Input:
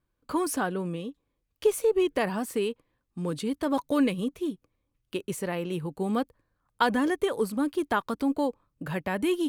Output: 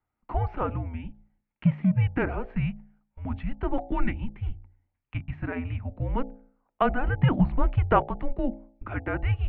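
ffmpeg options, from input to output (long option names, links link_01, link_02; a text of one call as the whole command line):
ffmpeg -i in.wav -filter_complex "[0:a]bandreject=frequency=58.56:width_type=h:width=4,bandreject=frequency=117.12:width_type=h:width=4,bandreject=frequency=175.68:width_type=h:width=4,bandreject=frequency=234.24:width_type=h:width=4,bandreject=frequency=292.8:width_type=h:width=4,bandreject=frequency=351.36:width_type=h:width=4,bandreject=frequency=409.92:width_type=h:width=4,bandreject=frequency=468.48:width_type=h:width=4,bandreject=frequency=527.04:width_type=h:width=4,bandreject=frequency=585.6:width_type=h:width=4,bandreject=frequency=644.16:width_type=h:width=4,bandreject=frequency=702.72:width_type=h:width=4,bandreject=frequency=761.28:width_type=h:width=4,bandreject=frequency=819.84:width_type=h:width=4,bandreject=frequency=878.4:width_type=h:width=4,bandreject=frequency=936.96:width_type=h:width=4,bandreject=frequency=995.52:width_type=h:width=4,bandreject=frequency=1054.08:width_type=h:width=4,bandreject=frequency=1112.64:width_type=h:width=4,asplit=3[link_01][link_02][link_03];[link_01]afade=type=out:start_time=7.17:duration=0.02[link_04];[link_02]acontrast=31,afade=type=in:start_time=7.17:duration=0.02,afade=type=out:start_time=8.02:duration=0.02[link_05];[link_03]afade=type=in:start_time=8.02:duration=0.02[link_06];[link_04][link_05][link_06]amix=inputs=3:normalize=0,highpass=frequency=180:width_type=q:width=0.5412,highpass=frequency=180:width_type=q:width=1.307,lowpass=frequency=2700:width_type=q:width=0.5176,lowpass=frequency=2700:width_type=q:width=0.7071,lowpass=frequency=2700:width_type=q:width=1.932,afreqshift=-260,volume=1.5dB" out.wav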